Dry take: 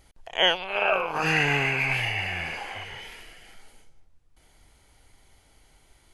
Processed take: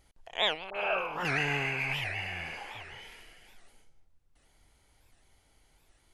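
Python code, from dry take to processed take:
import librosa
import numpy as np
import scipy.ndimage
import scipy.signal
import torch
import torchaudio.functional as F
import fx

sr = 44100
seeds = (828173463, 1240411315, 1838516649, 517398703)

y = fx.dispersion(x, sr, late='highs', ms=56.0, hz=1400.0, at=(0.7, 1.26))
y = fx.record_warp(y, sr, rpm=78.0, depth_cents=250.0)
y = F.gain(torch.from_numpy(y), -7.0).numpy()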